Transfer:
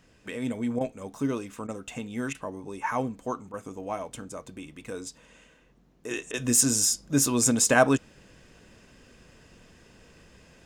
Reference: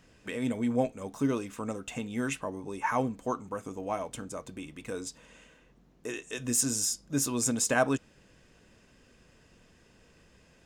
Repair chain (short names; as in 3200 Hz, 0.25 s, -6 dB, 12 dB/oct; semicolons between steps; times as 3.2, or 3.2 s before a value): interpolate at 0.79/1.67/2.33/3.52/6.32, 16 ms; gain 0 dB, from 6.11 s -6 dB